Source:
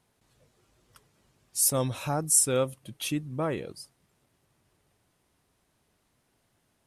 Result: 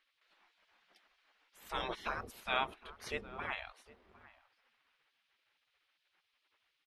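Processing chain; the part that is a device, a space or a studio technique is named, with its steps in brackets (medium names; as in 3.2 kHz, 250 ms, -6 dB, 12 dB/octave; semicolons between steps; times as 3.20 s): shout across a valley (distance through air 340 m; echo from a far wall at 130 m, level -20 dB); spectral gate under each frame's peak -20 dB weak; trim +9 dB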